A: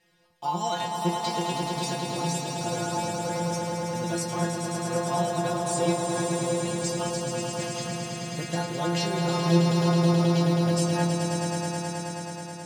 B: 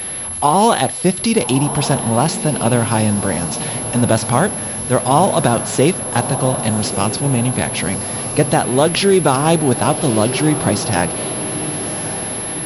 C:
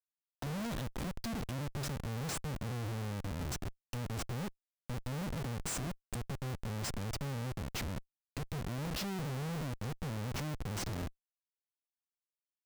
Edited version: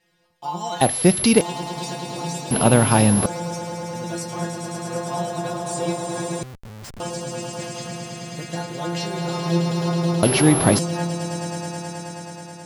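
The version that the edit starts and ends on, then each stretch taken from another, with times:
A
0.81–1.41 from B
2.51–3.26 from B
6.43–7 from C
10.23–10.79 from B

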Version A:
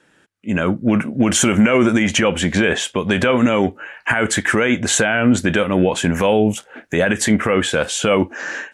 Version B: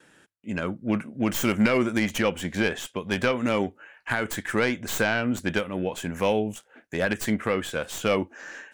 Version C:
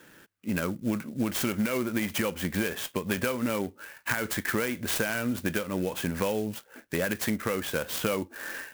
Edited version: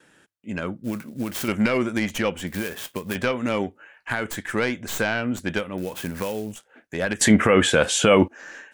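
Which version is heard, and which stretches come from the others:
B
0.84–1.48 from C
2.47–3.15 from C
5.78–6.52 from C
7.21–8.28 from A

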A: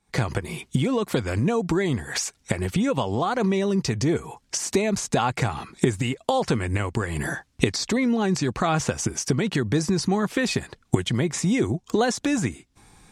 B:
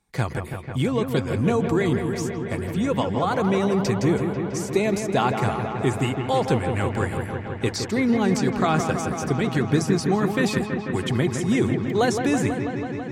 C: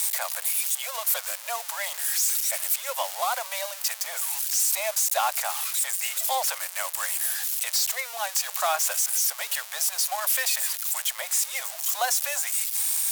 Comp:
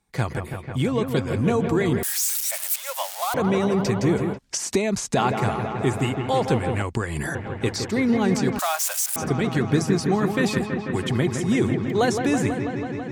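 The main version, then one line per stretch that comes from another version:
B
2.03–3.34 from C
4.36–5.16 from A, crossfade 0.06 s
6.82–7.35 from A
8.59–9.16 from C

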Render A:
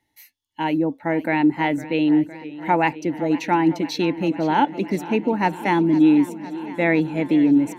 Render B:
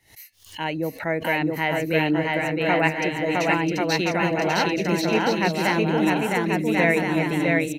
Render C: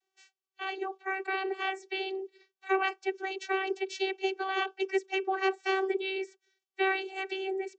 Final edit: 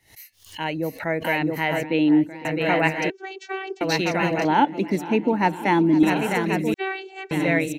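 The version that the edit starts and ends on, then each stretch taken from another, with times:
B
1.83–2.45 from A
3.1–3.81 from C
4.45–6.03 from A
6.74–7.31 from C

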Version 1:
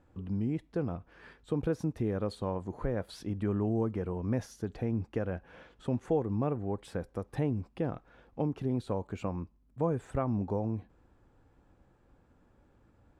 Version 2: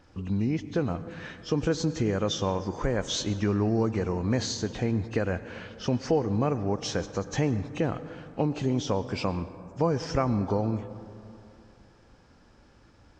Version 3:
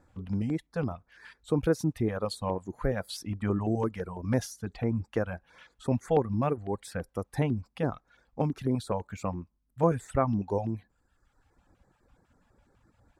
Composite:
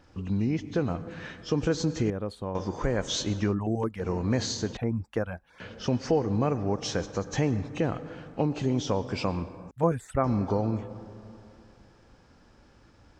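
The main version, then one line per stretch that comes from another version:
2
2.1–2.55 from 1
3.51–4.03 from 3, crossfade 0.10 s
4.77–5.6 from 3
9.71–10.24 from 3

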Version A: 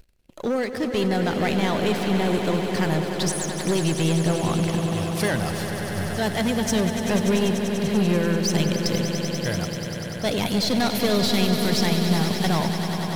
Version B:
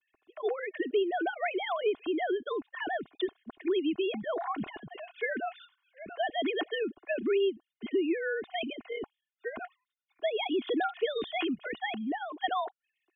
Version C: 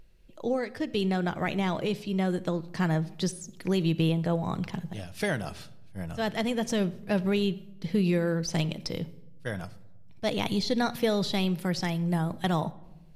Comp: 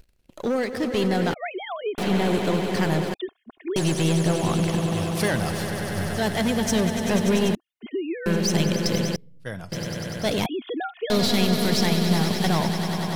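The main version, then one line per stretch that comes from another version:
A
1.34–1.98 from B
3.14–3.76 from B
7.55–8.26 from B
9.16–9.72 from C
10.46–11.1 from B

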